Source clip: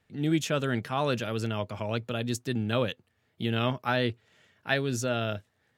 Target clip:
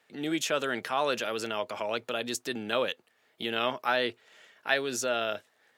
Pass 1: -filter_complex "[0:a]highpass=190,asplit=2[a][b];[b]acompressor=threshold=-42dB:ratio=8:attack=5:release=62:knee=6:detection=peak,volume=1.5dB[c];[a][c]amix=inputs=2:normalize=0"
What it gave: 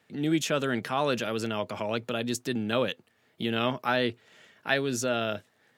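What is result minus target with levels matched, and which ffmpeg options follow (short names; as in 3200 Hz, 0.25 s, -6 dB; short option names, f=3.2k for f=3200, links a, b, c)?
250 Hz band +5.0 dB
-filter_complex "[0:a]highpass=430,asplit=2[a][b];[b]acompressor=threshold=-42dB:ratio=8:attack=5:release=62:knee=6:detection=peak,volume=1.5dB[c];[a][c]amix=inputs=2:normalize=0"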